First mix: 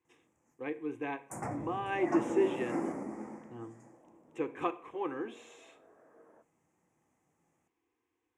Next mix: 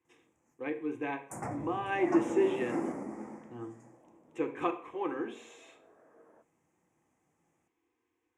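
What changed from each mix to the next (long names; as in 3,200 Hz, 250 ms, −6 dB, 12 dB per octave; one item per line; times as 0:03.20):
speech: send +6.5 dB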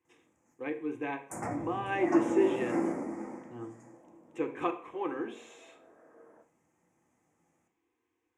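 background: send +11.0 dB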